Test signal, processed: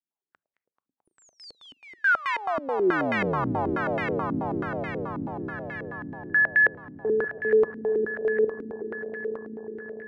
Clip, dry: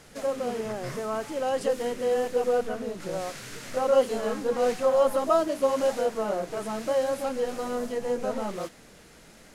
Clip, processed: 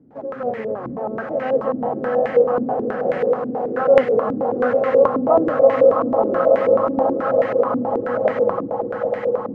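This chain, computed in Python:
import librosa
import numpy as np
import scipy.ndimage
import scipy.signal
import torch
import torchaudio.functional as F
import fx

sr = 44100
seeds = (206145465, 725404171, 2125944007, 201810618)

y = fx.octave_divider(x, sr, octaves=1, level_db=-5.0)
y = scipy.signal.sosfilt(scipy.signal.butter(2, 140.0, 'highpass', fs=sr, output='sos'), y)
y = fx.echo_swell(y, sr, ms=109, loudest=8, wet_db=-10.5)
y = fx.filter_held_lowpass(y, sr, hz=9.3, low_hz=270.0, high_hz=2000.0)
y = y * 10.0 ** (1.0 / 20.0)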